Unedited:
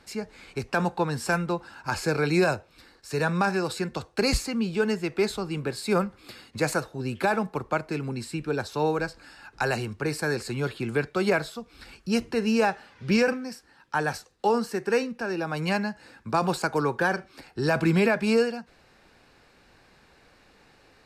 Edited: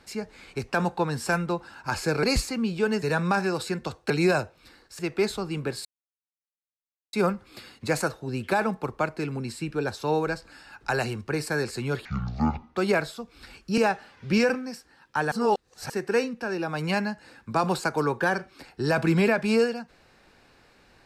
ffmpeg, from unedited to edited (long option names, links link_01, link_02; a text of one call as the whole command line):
ffmpeg -i in.wav -filter_complex "[0:a]asplit=11[link_01][link_02][link_03][link_04][link_05][link_06][link_07][link_08][link_09][link_10][link_11];[link_01]atrim=end=2.232[link_12];[link_02]atrim=start=4.198:end=4.992[link_13];[link_03]atrim=start=3.118:end=4.202[link_14];[link_04]atrim=start=2.228:end=3.122[link_15];[link_05]atrim=start=4.988:end=5.85,asetpts=PTS-STARTPTS,afade=type=out:start_time=0.858:duration=0.004:curve=hsin,apad=pad_dur=1.28[link_16];[link_06]atrim=start=5.85:end=10.774,asetpts=PTS-STARTPTS,afade=type=in:duration=0.004:curve=hsin[link_17];[link_07]atrim=start=10.77:end=11.15,asetpts=PTS-STARTPTS,asetrate=23373,aresample=44100[link_18];[link_08]atrim=start=11.146:end=12.162[link_19];[link_09]atrim=start=12.558:end=14.102[link_20];[link_10]atrim=start=14.098:end=14.682,asetpts=PTS-STARTPTS,areverse[link_21];[link_11]atrim=start=14.678[link_22];[link_12][link_13]acrossfade=duration=0.004:curve1=hsin:curve2=hsin[link_23];[link_23][link_14]acrossfade=duration=0.004:curve1=hsin:curve2=hsin[link_24];[link_24][link_15]acrossfade=duration=0.004:curve1=hsin:curve2=hsin[link_25];[link_16][link_17]concat=n=2:v=0:a=1[link_26];[link_25][link_26]acrossfade=duration=0.004:curve1=hsin:curve2=hsin[link_27];[link_27][link_18]acrossfade=duration=0.004:curve1=hsin:curve2=hsin[link_28];[link_28][link_19]acrossfade=duration=0.004:curve1=hsin:curve2=hsin[link_29];[link_29][link_20]acrossfade=duration=0.004:curve1=hsin:curve2=hsin[link_30];[link_30][link_21]acrossfade=duration=0.004:curve1=hsin:curve2=hsin[link_31];[link_31][link_22]acrossfade=duration=0.004:curve1=hsin:curve2=hsin" out.wav